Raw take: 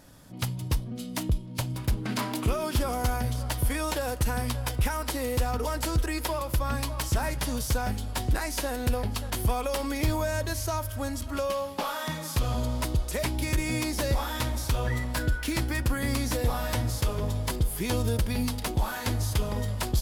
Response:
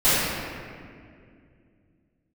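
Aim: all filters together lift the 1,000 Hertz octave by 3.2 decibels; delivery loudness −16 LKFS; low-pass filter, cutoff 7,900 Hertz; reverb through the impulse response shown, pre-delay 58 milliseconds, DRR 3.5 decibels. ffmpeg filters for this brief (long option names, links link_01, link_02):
-filter_complex "[0:a]lowpass=7900,equalizer=frequency=1000:width_type=o:gain=4,asplit=2[link_01][link_02];[1:a]atrim=start_sample=2205,adelay=58[link_03];[link_02][link_03]afir=irnorm=-1:irlink=0,volume=-24dB[link_04];[link_01][link_04]amix=inputs=2:normalize=0,volume=10.5dB"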